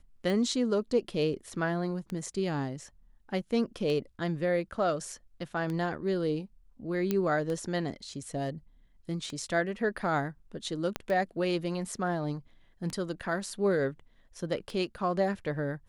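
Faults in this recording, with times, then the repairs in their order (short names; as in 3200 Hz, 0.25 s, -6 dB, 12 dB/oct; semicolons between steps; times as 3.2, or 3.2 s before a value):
tick 33 1/3 rpm
7.11 pop -15 dBFS
10.96 pop -16 dBFS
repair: de-click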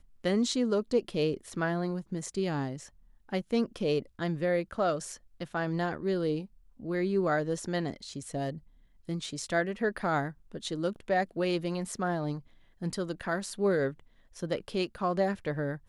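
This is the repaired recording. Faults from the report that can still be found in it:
10.96 pop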